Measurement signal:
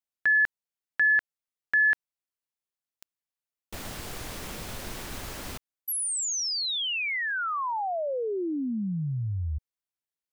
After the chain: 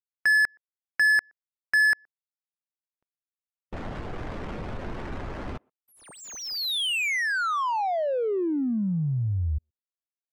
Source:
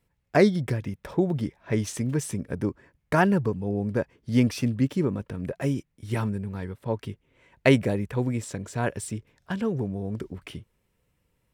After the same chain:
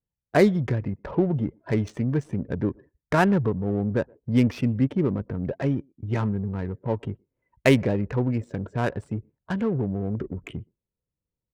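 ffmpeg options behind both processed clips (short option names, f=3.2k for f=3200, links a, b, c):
-filter_complex "[0:a]afftdn=nr=23:nf=-46,asplit=2[a][b];[b]acompressor=threshold=-34dB:ratio=12:attack=0.13:release=49:knee=1:detection=peak,volume=1.5dB[c];[a][c]amix=inputs=2:normalize=0,asplit=2[d][e];[e]adelay=120,highpass=300,lowpass=3.4k,asoftclip=type=hard:threshold=-13.5dB,volume=-28dB[f];[d][f]amix=inputs=2:normalize=0,adynamicsmooth=sensitivity=3.5:basefreq=1k"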